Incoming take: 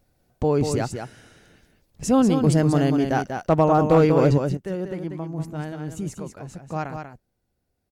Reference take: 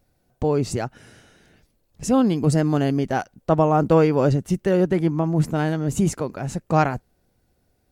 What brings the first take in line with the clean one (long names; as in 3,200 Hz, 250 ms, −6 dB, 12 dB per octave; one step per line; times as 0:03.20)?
clipped peaks rebuilt −7.5 dBFS
echo removal 191 ms −6.5 dB
level 0 dB, from 0:04.38 +10.5 dB